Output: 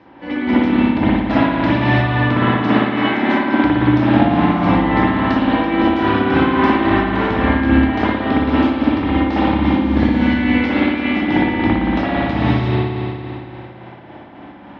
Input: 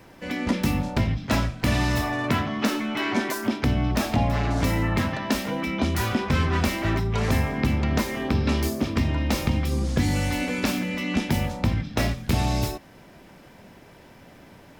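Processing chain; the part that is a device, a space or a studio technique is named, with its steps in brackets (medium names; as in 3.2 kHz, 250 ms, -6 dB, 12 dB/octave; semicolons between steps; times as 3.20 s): combo amplifier with spring reverb and tremolo (spring tank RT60 2.7 s, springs 57 ms, chirp 55 ms, DRR -10 dB; tremolo 3.6 Hz, depth 37%; cabinet simulation 82–3700 Hz, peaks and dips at 90 Hz -4 dB, 140 Hz -8 dB, 310 Hz +8 dB, 450 Hz -3 dB, 850 Hz +6 dB, 2.5 kHz -4 dB); trim +1 dB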